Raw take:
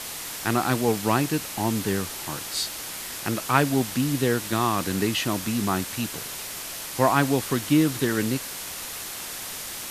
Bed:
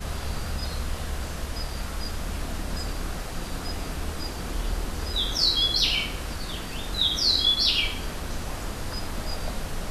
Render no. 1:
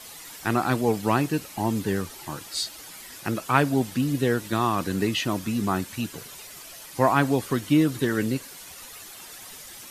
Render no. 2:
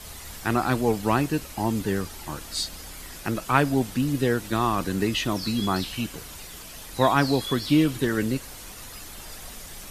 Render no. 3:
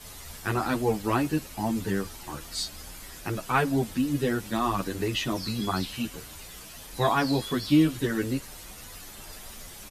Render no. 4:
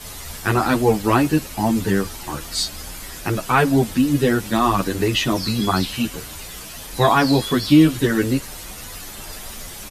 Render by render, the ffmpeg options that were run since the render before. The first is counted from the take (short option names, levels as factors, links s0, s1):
-af "afftdn=nr=11:nf=-35"
-filter_complex "[1:a]volume=0.211[s0];[0:a][s0]amix=inputs=2:normalize=0"
-filter_complex "[0:a]asplit=2[s0][s1];[s1]adelay=9.5,afreqshift=2.8[s2];[s0][s2]amix=inputs=2:normalize=1"
-af "volume=2.82,alimiter=limit=0.708:level=0:latency=1"